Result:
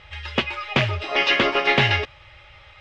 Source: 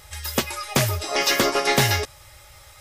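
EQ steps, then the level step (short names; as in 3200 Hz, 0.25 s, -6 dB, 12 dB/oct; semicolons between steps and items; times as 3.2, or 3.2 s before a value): ladder low-pass 3300 Hz, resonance 50%; +9.0 dB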